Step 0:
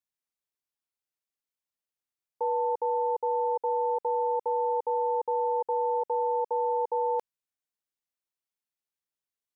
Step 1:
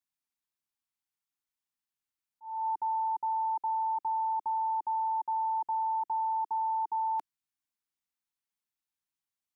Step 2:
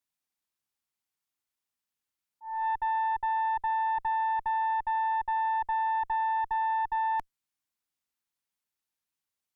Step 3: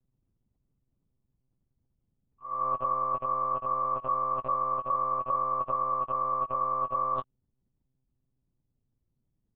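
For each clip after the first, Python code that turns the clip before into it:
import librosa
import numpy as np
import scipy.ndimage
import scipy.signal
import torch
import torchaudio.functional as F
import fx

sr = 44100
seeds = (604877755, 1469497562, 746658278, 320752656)

y1 = scipy.signal.sosfilt(scipy.signal.cheby1(2, 1.0, [310.0, 800.0], 'bandstop', fs=sr, output='sos'), x)
y1 = fx.auto_swell(y1, sr, attack_ms=276.0)
y2 = fx.tube_stage(y1, sr, drive_db=27.0, bias=0.6)
y2 = F.gain(torch.from_numpy(y2), 5.5).numpy()
y3 = fx.octave_mirror(y2, sr, pivot_hz=1000.0)
y3 = fx.rider(y3, sr, range_db=10, speed_s=0.5)
y3 = fx.lpc_monotone(y3, sr, seeds[0], pitch_hz=130.0, order=10)
y3 = F.gain(torch.from_numpy(y3), 2.5).numpy()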